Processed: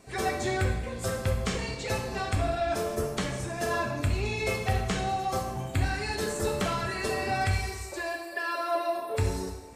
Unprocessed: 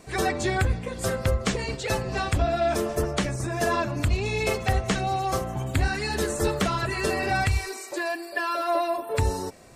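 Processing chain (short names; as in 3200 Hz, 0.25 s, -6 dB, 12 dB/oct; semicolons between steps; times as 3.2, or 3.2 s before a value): plate-style reverb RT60 0.98 s, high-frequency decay 0.95×, DRR 1.5 dB; gain -6 dB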